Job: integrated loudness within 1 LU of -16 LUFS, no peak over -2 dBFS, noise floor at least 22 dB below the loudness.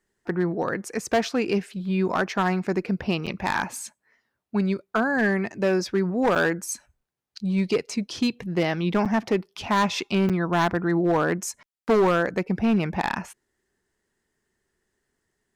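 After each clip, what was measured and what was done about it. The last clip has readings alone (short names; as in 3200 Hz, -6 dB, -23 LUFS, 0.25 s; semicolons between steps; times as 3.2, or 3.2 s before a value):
clipped 1.5%; flat tops at -15.5 dBFS; dropouts 4; longest dropout 7.1 ms; loudness -25.0 LUFS; peak -15.5 dBFS; loudness target -16.0 LUFS
-> clip repair -15.5 dBFS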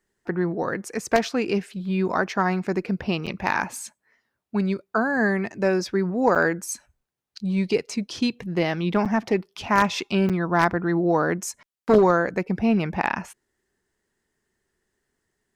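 clipped 0.0%; dropouts 4; longest dropout 7.1 ms
-> interpolate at 3.26/6.35/9.05/10.29, 7.1 ms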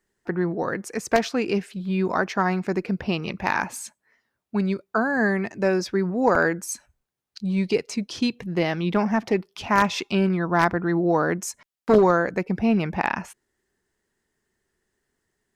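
dropouts 0; loudness -24.0 LUFS; peak -6.5 dBFS; loudness target -16.0 LUFS
-> gain +8 dB; limiter -2 dBFS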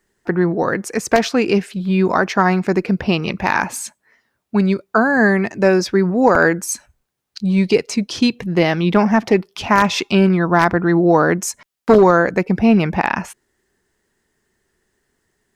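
loudness -16.5 LUFS; peak -2.0 dBFS; noise floor -73 dBFS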